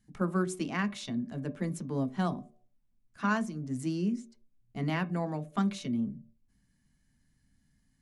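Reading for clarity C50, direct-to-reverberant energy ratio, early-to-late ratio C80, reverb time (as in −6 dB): 19.0 dB, 6.0 dB, 22.0 dB, 0.55 s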